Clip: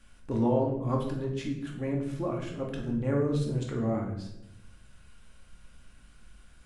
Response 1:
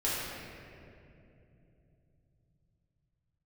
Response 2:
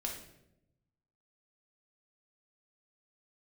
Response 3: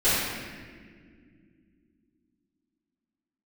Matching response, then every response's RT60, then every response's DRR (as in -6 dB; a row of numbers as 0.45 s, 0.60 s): 2; 2.9 s, 0.85 s, no single decay rate; -9.5 dB, -1.0 dB, -17.5 dB